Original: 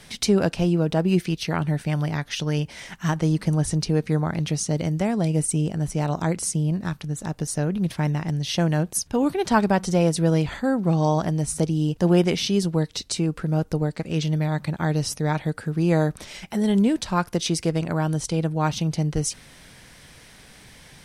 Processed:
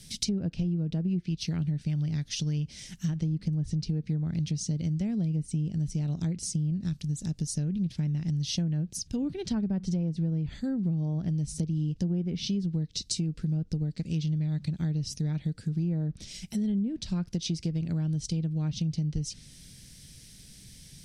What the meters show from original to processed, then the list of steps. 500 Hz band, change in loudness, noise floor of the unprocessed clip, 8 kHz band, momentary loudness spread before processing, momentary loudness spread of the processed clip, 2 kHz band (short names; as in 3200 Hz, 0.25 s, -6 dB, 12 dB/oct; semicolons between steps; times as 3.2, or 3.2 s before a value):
-18.0 dB, -7.0 dB, -49 dBFS, -8.5 dB, 6 LU, 5 LU, -18.5 dB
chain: treble ducked by the level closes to 1400 Hz, closed at -15.5 dBFS; EQ curve 180 Hz 0 dB, 1000 Hz -25 dB, 5100 Hz +1 dB; compressor, threshold -26 dBFS, peak gain reduction 9 dB